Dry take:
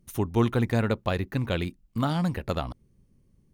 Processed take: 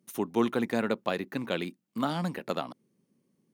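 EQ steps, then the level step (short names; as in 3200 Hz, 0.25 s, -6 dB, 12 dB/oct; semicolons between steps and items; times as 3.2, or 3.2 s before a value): HPF 190 Hz 24 dB/oct; -1.5 dB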